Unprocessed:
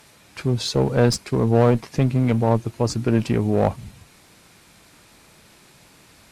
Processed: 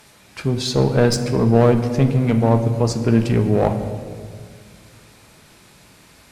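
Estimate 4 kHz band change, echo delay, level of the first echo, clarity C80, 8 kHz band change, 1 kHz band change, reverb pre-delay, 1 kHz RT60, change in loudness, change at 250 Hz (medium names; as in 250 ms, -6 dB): +2.0 dB, no echo, no echo, 10.5 dB, +2.0 dB, +2.0 dB, 5 ms, 1.8 s, +3.0 dB, +3.5 dB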